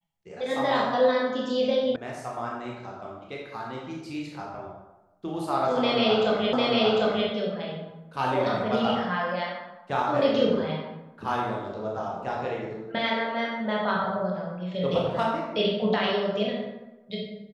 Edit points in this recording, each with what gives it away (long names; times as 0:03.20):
0:01.96: cut off before it has died away
0:06.53: the same again, the last 0.75 s